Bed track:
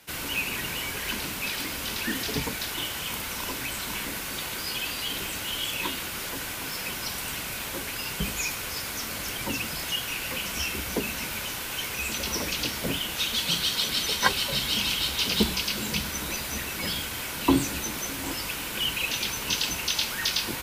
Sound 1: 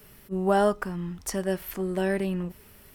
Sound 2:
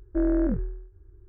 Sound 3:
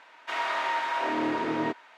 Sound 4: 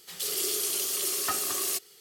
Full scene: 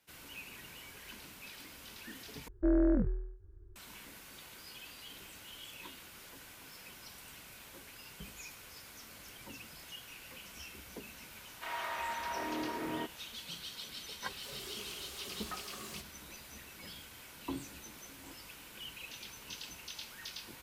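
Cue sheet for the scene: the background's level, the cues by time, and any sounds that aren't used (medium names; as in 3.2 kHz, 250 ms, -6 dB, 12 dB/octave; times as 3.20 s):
bed track -19 dB
2.48 s: replace with 2 -4 dB
11.34 s: add 3 -10 dB
14.23 s: add 4 -14 dB + overdrive pedal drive 13 dB, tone 1.6 kHz, clips at -15 dBFS
not used: 1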